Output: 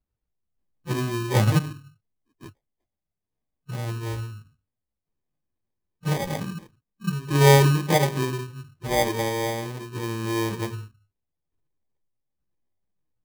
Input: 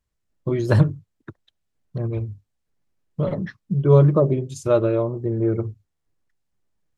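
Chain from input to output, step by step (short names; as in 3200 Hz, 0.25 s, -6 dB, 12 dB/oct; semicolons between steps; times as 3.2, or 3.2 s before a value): LPF 1400 Hz 24 dB/oct; plain phase-vocoder stretch 1.9×; sample-and-hold 32×; upward expander 1.5:1, over -21 dBFS; gain +2 dB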